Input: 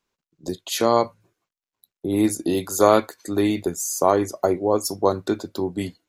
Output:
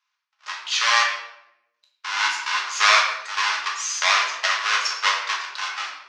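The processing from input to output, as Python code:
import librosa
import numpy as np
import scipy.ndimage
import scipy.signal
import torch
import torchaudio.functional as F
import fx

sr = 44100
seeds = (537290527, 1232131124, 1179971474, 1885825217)

y = fx.halfwave_hold(x, sr)
y = scipy.signal.sosfilt(scipy.signal.ellip(3, 1.0, 70, [1100.0, 5800.0], 'bandpass', fs=sr, output='sos'), y)
y = fx.room_shoebox(y, sr, seeds[0], volume_m3=260.0, walls='mixed', distance_m=1.4)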